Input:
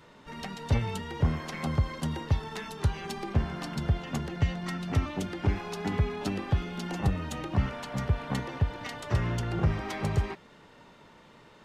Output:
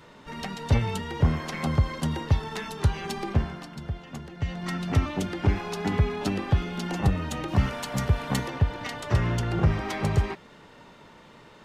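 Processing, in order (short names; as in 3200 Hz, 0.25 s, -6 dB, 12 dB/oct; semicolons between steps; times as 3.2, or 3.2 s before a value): 3.29–4.75 dip -10 dB, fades 0.38 s; 7.48–8.5 high shelf 5900 Hz +11 dB; gain +4 dB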